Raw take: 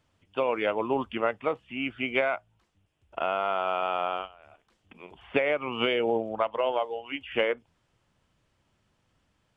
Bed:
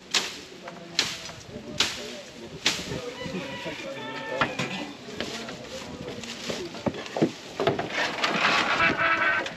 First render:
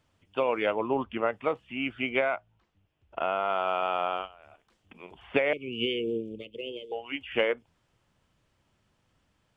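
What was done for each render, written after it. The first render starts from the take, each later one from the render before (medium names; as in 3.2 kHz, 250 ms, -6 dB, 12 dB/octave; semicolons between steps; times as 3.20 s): 0.76–1.33 s: distance through air 230 m; 2.09–3.50 s: distance through air 120 m; 5.53–6.92 s: elliptic band-stop 420–2600 Hz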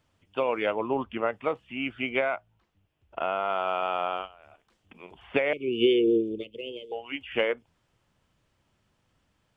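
5.60–6.44 s: small resonant body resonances 360/1500/3500 Hz, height 12 dB, ringing for 25 ms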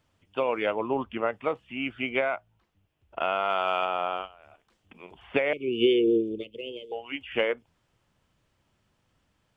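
3.20–3.85 s: treble shelf 2.2 kHz +9 dB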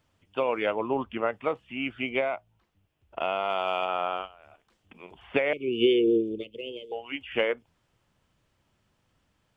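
2.02–3.89 s: dynamic bell 1.5 kHz, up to -7 dB, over -47 dBFS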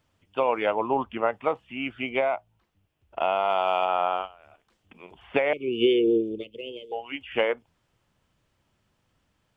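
dynamic bell 840 Hz, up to +7 dB, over -42 dBFS, Q 1.6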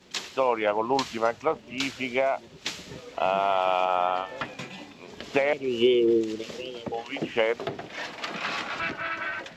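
add bed -8.5 dB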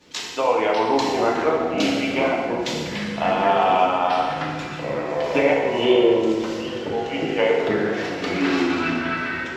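FDN reverb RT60 1.5 s, low-frequency decay 1.25×, high-frequency decay 0.85×, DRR -3 dB; ever faster or slower copies 548 ms, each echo -5 st, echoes 2, each echo -6 dB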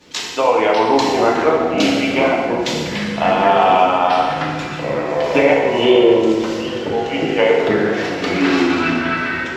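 trim +5.5 dB; peak limiter -2 dBFS, peak gain reduction 2 dB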